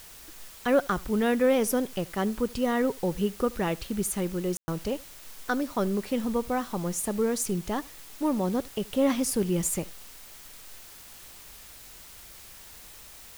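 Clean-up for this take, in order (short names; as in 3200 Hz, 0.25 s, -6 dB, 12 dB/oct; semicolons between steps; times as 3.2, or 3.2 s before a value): room tone fill 4.57–4.68; denoiser 26 dB, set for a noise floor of -48 dBFS; inverse comb 77 ms -23.5 dB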